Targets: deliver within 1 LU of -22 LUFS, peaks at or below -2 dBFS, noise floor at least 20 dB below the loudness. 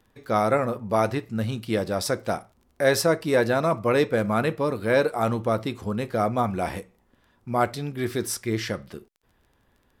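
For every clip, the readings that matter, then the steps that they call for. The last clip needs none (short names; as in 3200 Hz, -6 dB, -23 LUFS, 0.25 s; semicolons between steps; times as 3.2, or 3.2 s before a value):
ticks 18/s; loudness -25.0 LUFS; peak -7.5 dBFS; loudness target -22.0 LUFS
-> de-click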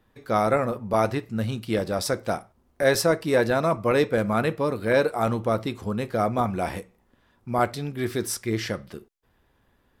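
ticks 0.70/s; loudness -25.0 LUFS; peak -7.5 dBFS; loudness target -22.0 LUFS
-> gain +3 dB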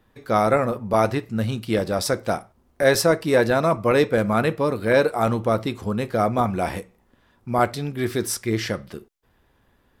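loudness -22.0 LUFS; peak -4.5 dBFS; noise floor -63 dBFS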